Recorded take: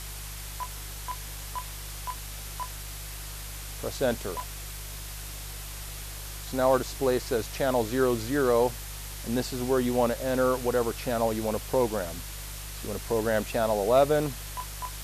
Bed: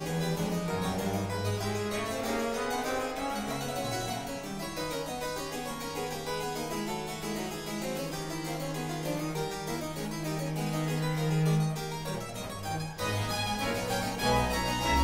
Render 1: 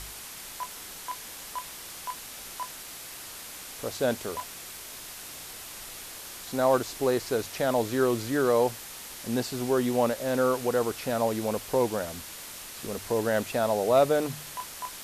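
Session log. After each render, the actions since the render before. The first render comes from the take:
hum removal 50 Hz, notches 3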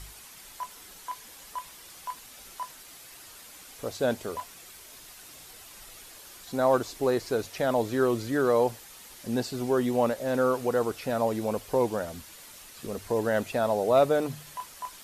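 broadband denoise 8 dB, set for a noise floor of −42 dBFS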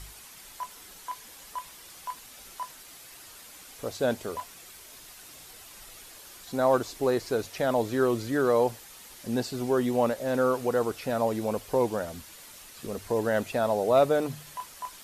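no processing that can be heard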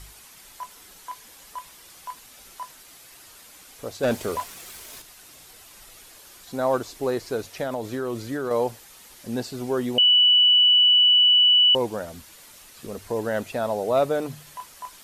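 0:04.03–0:05.02: leveller curve on the samples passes 2
0:07.63–0:08.51: downward compressor, threshold −24 dBFS
0:09.98–0:11.75: beep over 2,960 Hz −13 dBFS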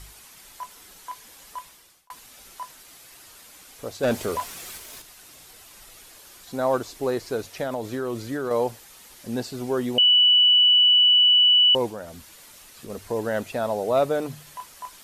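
0:01.58–0:02.10: fade out linear
0:04.07–0:04.78: converter with a step at zero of −41.5 dBFS
0:11.89–0:12.90: downward compressor 1.5 to 1, threshold −39 dBFS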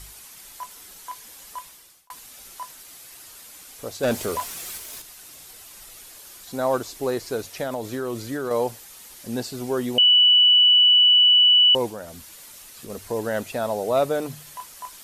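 high-shelf EQ 5,200 Hz +6 dB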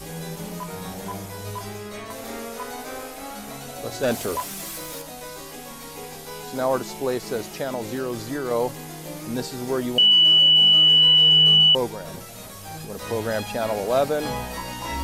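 mix in bed −3 dB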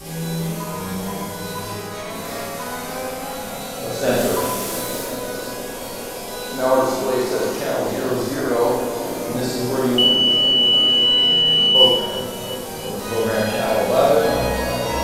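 feedback echo with a low-pass in the loop 347 ms, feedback 85%, low-pass 2,700 Hz, level −11 dB
four-comb reverb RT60 0.99 s, combs from 33 ms, DRR −5 dB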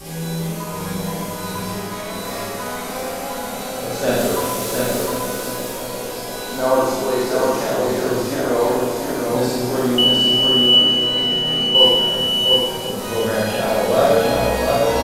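single-tap delay 710 ms −4 dB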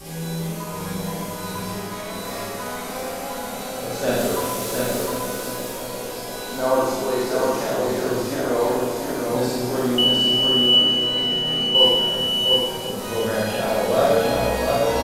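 level −3 dB

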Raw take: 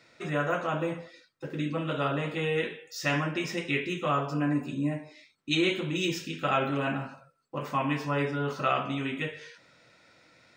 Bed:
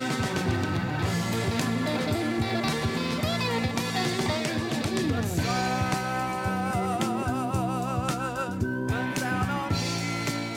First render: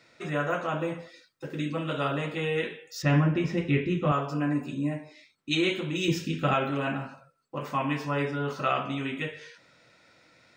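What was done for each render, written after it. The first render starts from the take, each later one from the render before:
0:00.99–0:02.26: high-shelf EQ 5,100 Hz +5.5 dB
0:03.02–0:04.12: RIAA equalisation playback
0:06.08–0:06.54: low-shelf EQ 290 Hz +11.5 dB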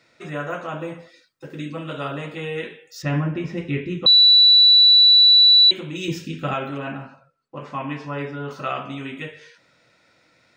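0:03.09–0:03.56: high-shelf EQ 5,400 Hz −5.5 dB
0:04.06–0:05.71: beep over 3,950 Hz −8.5 dBFS
0:06.78–0:08.51: high-frequency loss of the air 87 metres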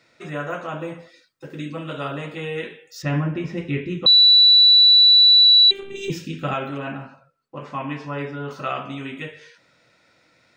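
0:05.44–0:06.10: phases set to zero 394 Hz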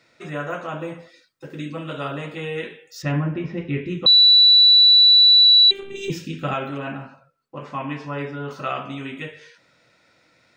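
0:03.12–0:03.85: high-frequency loss of the air 160 metres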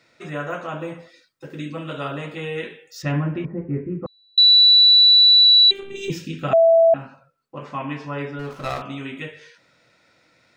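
0:03.45–0:04.38: Bessel low-pass filter 1,000 Hz, order 6
0:06.53–0:06.94: beep over 661 Hz −10 dBFS
0:08.39–0:08.82: windowed peak hold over 9 samples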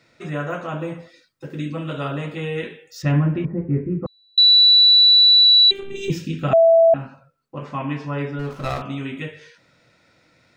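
low-shelf EQ 240 Hz +7.5 dB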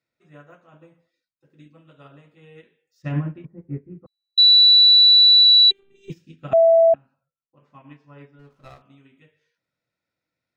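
expander for the loud parts 2.5 to 1, over −29 dBFS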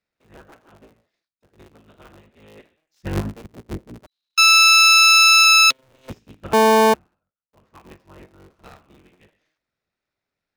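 sub-harmonics by changed cycles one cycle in 3, inverted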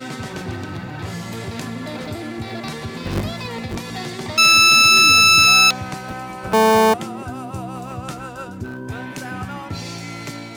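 mix in bed −2 dB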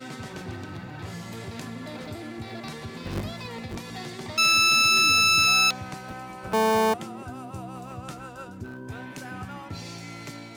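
level −8 dB

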